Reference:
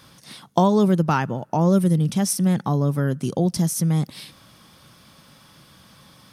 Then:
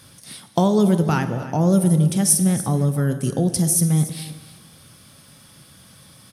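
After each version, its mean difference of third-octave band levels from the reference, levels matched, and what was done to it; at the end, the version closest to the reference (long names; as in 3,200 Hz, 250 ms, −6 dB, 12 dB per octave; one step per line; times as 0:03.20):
4.0 dB: graphic EQ with 15 bands 100 Hz +6 dB, 1,000 Hz −5 dB, 10,000 Hz +11 dB
single-tap delay 287 ms −15.5 dB
dense smooth reverb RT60 1.4 s, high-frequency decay 0.75×, DRR 9 dB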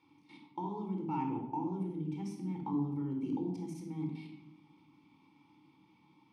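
8.5 dB: output level in coarse steps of 14 dB
formant filter u
rectangular room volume 2,600 cubic metres, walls furnished, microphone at 4.4 metres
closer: first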